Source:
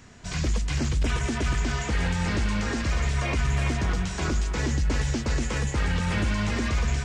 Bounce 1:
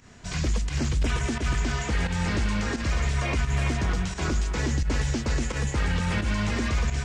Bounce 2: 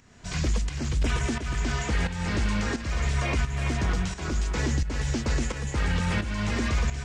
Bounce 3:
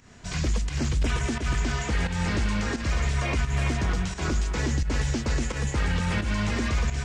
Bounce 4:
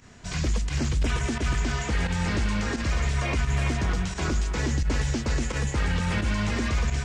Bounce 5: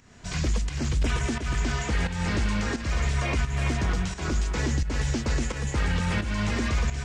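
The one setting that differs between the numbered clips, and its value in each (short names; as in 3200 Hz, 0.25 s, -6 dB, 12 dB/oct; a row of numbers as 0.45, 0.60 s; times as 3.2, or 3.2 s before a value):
pump, release: 106, 485, 165, 69, 301 ms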